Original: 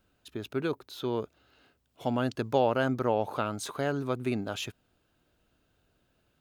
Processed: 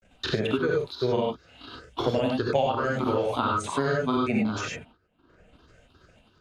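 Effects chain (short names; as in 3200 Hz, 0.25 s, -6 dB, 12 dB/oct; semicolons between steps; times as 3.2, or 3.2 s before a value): moving spectral ripple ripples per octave 0.53, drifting +2.8 Hz, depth 15 dB; LPF 6600 Hz 12 dB/oct; gate with hold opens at -56 dBFS; level quantiser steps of 10 dB; grains, spray 24 ms, pitch spread up and down by 0 st; non-linear reverb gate 0.12 s rising, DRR -1.5 dB; three-band squash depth 100%; gain +4 dB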